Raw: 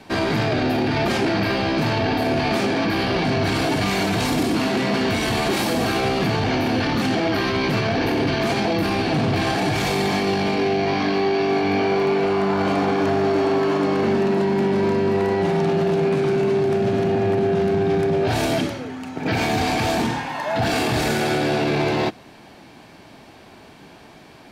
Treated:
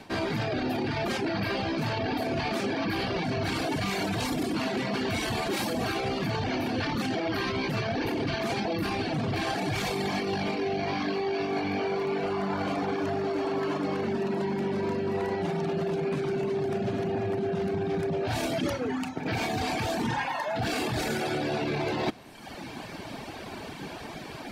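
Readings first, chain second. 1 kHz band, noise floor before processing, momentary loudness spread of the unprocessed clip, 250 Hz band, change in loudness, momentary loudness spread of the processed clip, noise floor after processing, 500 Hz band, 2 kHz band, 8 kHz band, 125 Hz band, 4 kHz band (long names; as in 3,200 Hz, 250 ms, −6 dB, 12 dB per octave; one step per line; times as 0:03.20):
−8.5 dB, −45 dBFS, 1 LU, −8.5 dB, −9.0 dB, 3 LU, −41 dBFS, −9.0 dB, −8.0 dB, −7.5 dB, −8.5 dB, −8.0 dB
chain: reverb reduction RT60 0.9 s
reversed playback
downward compressor 16 to 1, threshold −34 dBFS, peak gain reduction 16 dB
reversed playback
wave folding −26.5 dBFS
level +8 dB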